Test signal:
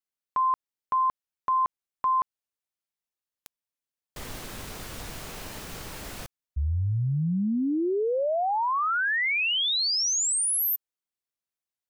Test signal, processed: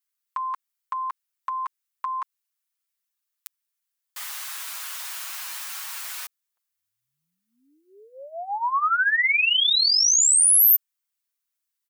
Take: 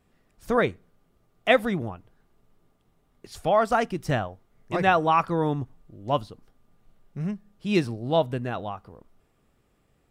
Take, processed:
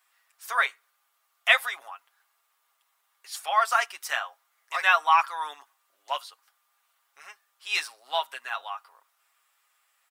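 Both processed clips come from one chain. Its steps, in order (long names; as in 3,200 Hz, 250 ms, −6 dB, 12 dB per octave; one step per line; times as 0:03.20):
high-pass filter 1,000 Hz 24 dB per octave
high-shelf EQ 8,400 Hz +8 dB
comb filter 7.3 ms, depth 65%
level +3 dB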